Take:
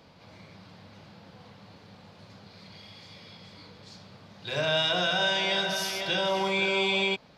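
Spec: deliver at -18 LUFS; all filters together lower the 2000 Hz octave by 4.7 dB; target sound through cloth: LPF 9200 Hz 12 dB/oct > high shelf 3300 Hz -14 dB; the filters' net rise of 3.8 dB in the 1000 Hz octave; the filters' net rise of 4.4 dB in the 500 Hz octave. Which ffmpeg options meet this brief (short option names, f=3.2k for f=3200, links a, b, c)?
-af "lowpass=9.2k,equalizer=f=500:t=o:g=5,equalizer=f=1k:t=o:g=5,equalizer=f=2k:t=o:g=-4,highshelf=f=3.3k:g=-14,volume=8.5dB"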